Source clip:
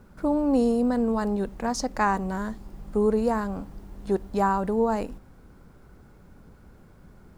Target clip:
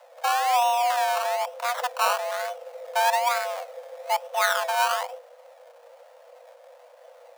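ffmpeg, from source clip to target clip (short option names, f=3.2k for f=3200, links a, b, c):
-af "acrusher=samples=23:mix=1:aa=0.000001:lfo=1:lforange=13.8:lforate=1.1,afreqshift=480"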